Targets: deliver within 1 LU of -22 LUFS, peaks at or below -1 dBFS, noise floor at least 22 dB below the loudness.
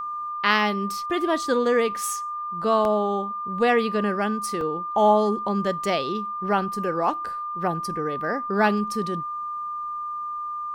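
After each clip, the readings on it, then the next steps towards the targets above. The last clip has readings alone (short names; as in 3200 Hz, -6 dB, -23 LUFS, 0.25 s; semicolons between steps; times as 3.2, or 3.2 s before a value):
dropouts 2; longest dropout 1.7 ms; steady tone 1200 Hz; tone level -28 dBFS; loudness -24.5 LUFS; peak -4.0 dBFS; loudness target -22.0 LUFS
-> interpolate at 2.85/4.61, 1.7 ms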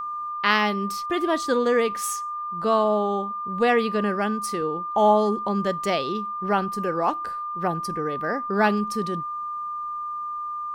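dropouts 0; steady tone 1200 Hz; tone level -28 dBFS
-> notch 1200 Hz, Q 30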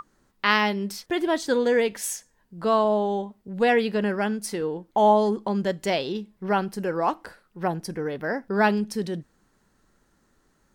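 steady tone none; loudness -25.0 LUFS; peak -4.5 dBFS; loudness target -22.0 LUFS
-> gain +3 dB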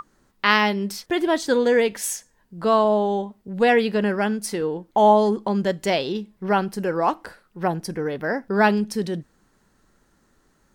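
loudness -22.0 LUFS; peak -1.5 dBFS; noise floor -64 dBFS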